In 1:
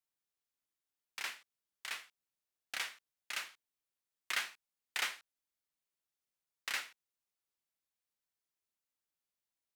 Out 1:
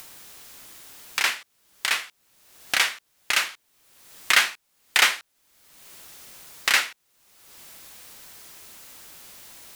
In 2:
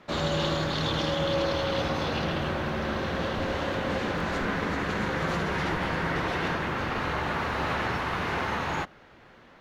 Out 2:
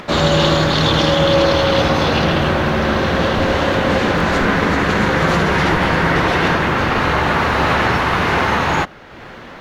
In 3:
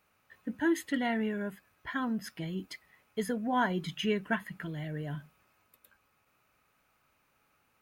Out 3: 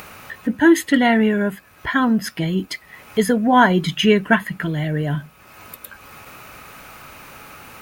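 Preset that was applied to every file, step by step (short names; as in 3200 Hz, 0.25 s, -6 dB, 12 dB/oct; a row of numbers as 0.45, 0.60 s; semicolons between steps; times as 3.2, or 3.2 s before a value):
upward compressor, threshold -41 dBFS; normalise peaks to -2 dBFS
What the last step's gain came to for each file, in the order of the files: +18.0, +13.5, +15.5 dB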